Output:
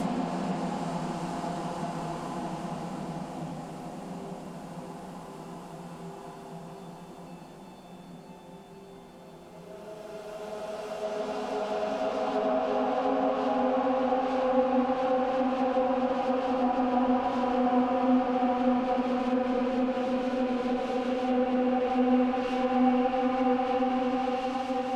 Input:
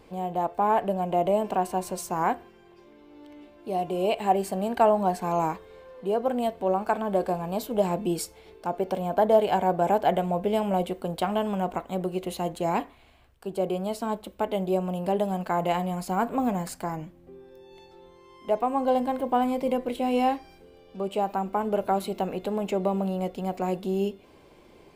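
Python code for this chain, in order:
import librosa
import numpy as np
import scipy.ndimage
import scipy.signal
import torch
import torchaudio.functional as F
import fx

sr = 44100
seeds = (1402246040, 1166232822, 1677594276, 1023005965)

p1 = fx.reverse_delay_fb(x, sr, ms=337, feedback_pct=59, wet_db=-10)
p2 = fx.sample_hold(p1, sr, seeds[0], rate_hz=2000.0, jitter_pct=20)
p3 = p1 + (p2 * librosa.db_to_amplitude(-5.5))
p4 = fx.paulstretch(p3, sr, seeds[1], factor=6.5, window_s=1.0, from_s=16.65)
p5 = fx.env_lowpass_down(p4, sr, base_hz=2500.0, full_db=-18.0)
y = p5 * librosa.db_to_amplitude(-4.5)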